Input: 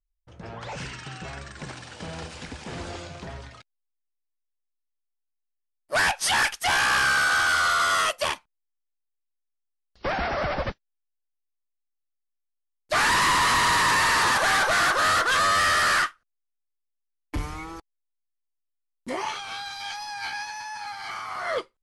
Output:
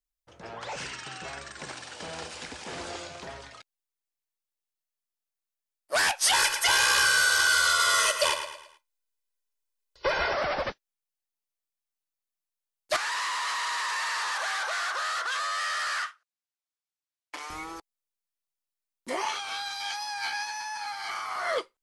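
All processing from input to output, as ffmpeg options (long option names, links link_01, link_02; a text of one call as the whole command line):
ffmpeg -i in.wav -filter_complex "[0:a]asettb=1/sr,asplit=3[link_01][link_02][link_03];[link_01]atrim=end=6.334[link_04];[link_02]atrim=start=6.33:end=10.33,asetpts=PTS-STARTPTS,afade=type=in:duration=0.004:curve=qsin,afade=type=out:start_time=3.996:duration=0.004:curve=qsin,aecho=1:1:2:0.92,atrim=end_sample=176400,aecho=1:1:109|218|327|436:0.299|0.119|0.0478|0.0191,atrim=end_sample=176400[link_05];[link_03]atrim=start=10.326[link_06];[link_04][link_05]acrossfade=duration=0.004:curve1=hsin:curve2=qsin[link_07];[link_07][link_06]acrossfade=duration=0.004:curve1=qsin:curve2=hsin,asettb=1/sr,asplit=3[link_08][link_09][link_10];[link_08]atrim=end=12.964[link_11];[link_09]atrim=start=12.96:end=17.5,asetpts=PTS-STARTPTS,afade=type=in:duration=0.004:curve=qsin,afade=type=out:start_time=4.536:duration=0.004:curve=qsin,highpass=710,lowpass=7900,acompressor=threshold=-27dB:ratio=10:attack=3.2:release=140:knee=1:detection=peak[link_12];[link_10]atrim=start=17.496[link_13];[link_11][link_12]acrossfade=duration=0.004:curve1=hsin:curve2=qsin[link_14];[link_14][link_13]acrossfade=duration=0.004:curve1=qsin:curve2=hsin,bass=frequency=250:gain=-12,treble=frequency=4000:gain=3,acrossover=split=420|3000[link_15][link_16][link_17];[link_16]acompressor=threshold=-25dB:ratio=3[link_18];[link_15][link_18][link_17]amix=inputs=3:normalize=0" out.wav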